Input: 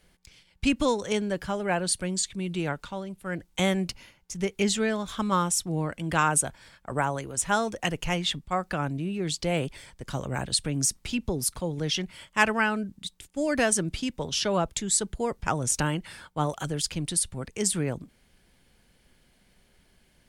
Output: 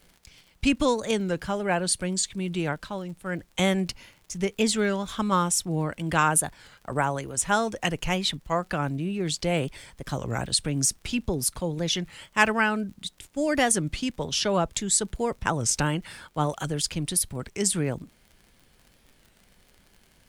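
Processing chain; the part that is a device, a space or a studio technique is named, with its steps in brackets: warped LP (warped record 33 1/3 rpm, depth 160 cents; crackle 50 per s -43 dBFS; pink noise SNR 41 dB); trim +1.5 dB

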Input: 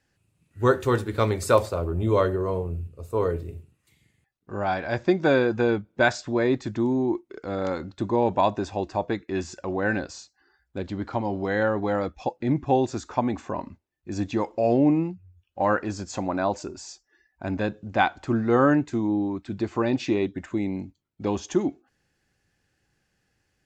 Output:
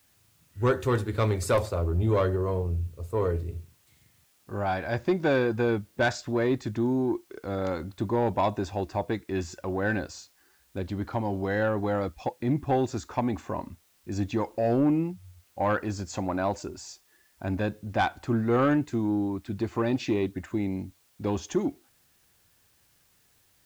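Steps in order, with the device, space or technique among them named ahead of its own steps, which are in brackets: open-reel tape (saturation -14 dBFS, distortion -17 dB; peaking EQ 85 Hz +5 dB 1.05 oct; white noise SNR 37 dB); trim -2 dB

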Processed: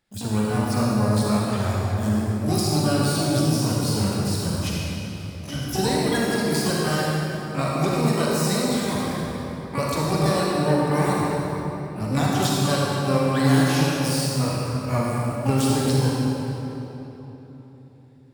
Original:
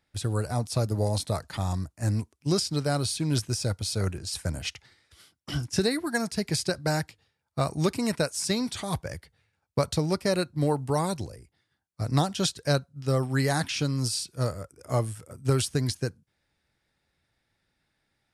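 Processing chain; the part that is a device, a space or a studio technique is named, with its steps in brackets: shimmer-style reverb (harmony voices +12 st -5 dB; reverberation RT60 3.7 s, pre-delay 35 ms, DRR -5 dB); trim -2 dB

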